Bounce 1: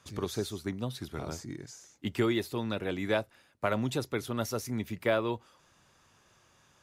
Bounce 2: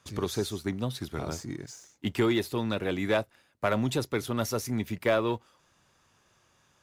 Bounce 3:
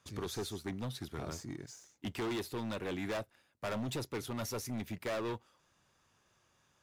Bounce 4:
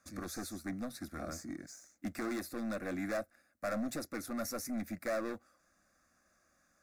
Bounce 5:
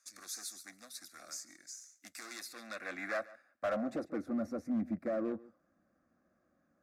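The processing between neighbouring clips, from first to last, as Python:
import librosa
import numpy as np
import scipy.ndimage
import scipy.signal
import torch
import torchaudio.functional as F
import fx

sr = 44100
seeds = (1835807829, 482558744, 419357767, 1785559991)

y1 = fx.leveller(x, sr, passes=1)
y2 = np.clip(y1, -10.0 ** (-28.0 / 20.0), 10.0 ** (-28.0 / 20.0))
y2 = y2 * 10.0 ** (-6.0 / 20.0)
y3 = fx.fixed_phaser(y2, sr, hz=620.0, stages=8)
y3 = y3 * 10.0 ** (3.0 / 20.0)
y4 = fx.filter_sweep_bandpass(y3, sr, from_hz=6700.0, to_hz=260.0, start_s=2.22, end_s=4.38, q=0.76)
y4 = y4 + 10.0 ** (-20.0 / 20.0) * np.pad(y4, (int(142 * sr / 1000.0), 0))[:len(y4)]
y4 = np.clip(10.0 ** (33.0 / 20.0) * y4, -1.0, 1.0) / 10.0 ** (33.0 / 20.0)
y4 = y4 * 10.0 ** (5.0 / 20.0)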